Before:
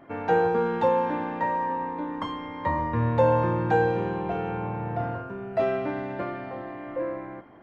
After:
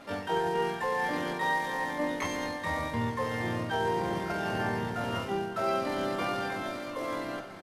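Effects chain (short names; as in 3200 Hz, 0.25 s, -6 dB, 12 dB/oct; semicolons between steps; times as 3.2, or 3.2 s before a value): CVSD 32 kbps; reverse; compressor 6:1, threshold -31 dBFS, peak gain reduction 14.5 dB; reverse; flange 1.1 Hz, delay 9.8 ms, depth 1.3 ms, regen +22%; diffused feedback echo 0.942 s, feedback 51%, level -16 dB; harmoniser -3 st -7 dB, +12 st 0 dB; gain +3 dB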